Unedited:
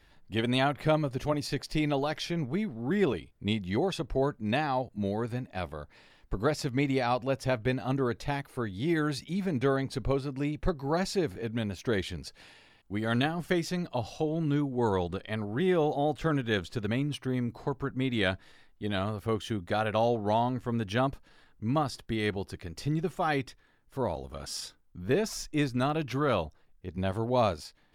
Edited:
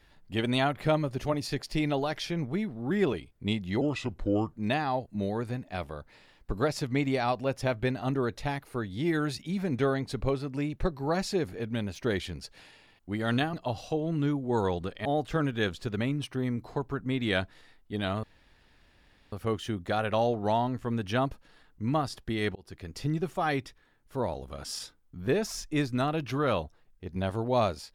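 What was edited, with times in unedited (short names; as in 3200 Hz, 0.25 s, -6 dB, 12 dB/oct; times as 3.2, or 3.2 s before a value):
3.81–4.36 speed 76%
13.36–13.82 cut
15.34–15.96 cut
19.14 insert room tone 1.09 s
22.37–22.79 fade in equal-power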